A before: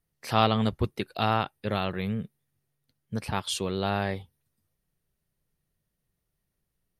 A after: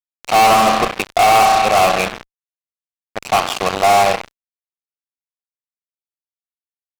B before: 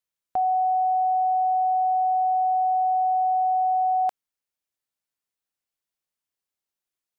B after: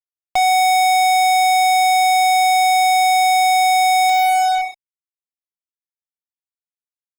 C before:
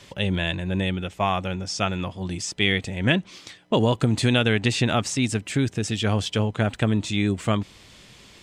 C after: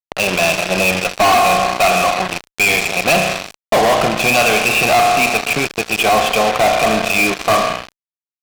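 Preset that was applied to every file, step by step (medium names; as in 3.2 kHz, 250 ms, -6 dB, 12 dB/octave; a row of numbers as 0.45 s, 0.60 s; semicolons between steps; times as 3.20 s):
gate with hold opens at -36 dBFS; vowel filter a; cabinet simulation 150–3800 Hz, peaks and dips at 160 Hz +10 dB, 270 Hz -4 dB, 1.1 kHz +3 dB, 2.4 kHz +6 dB; spring tank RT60 1.6 s, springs 32 ms, chirp 65 ms, DRR 6.5 dB; fuzz box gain 44 dB, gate -44 dBFS; normalise loudness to -14 LUFS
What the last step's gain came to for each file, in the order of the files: +4.5 dB, -0.5 dB, +3.5 dB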